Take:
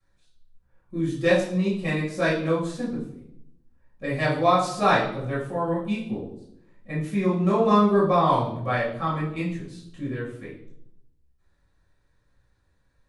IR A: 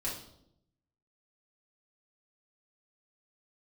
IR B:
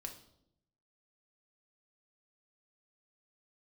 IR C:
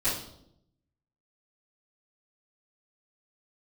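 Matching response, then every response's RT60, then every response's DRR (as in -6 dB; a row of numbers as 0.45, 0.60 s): C; 0.75, 0.75, 0.75 s; -7.0, 3.0, -16.0 dB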